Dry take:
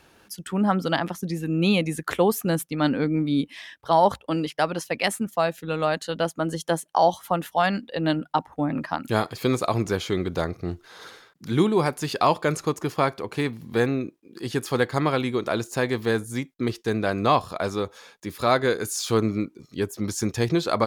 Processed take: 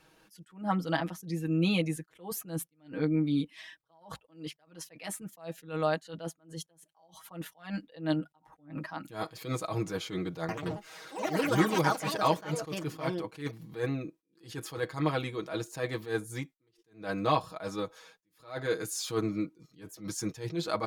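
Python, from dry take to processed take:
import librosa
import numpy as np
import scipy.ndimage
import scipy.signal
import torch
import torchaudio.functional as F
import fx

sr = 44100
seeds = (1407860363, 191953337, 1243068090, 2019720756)

y = fx.echo_pitch(x, sr, ms=86, semitones=5, count=3, db_per_echo=-3.0, at=(10.4, 14.43))
y = y + 0.87 * np.pad(y, (int(6.3 * sr / 1000.0), 0))[:len(y)]
y = fx.attack_slew(y, sr, db_per_s=170.0)
y = y * 10.0 ** (-9.0 / 20.0)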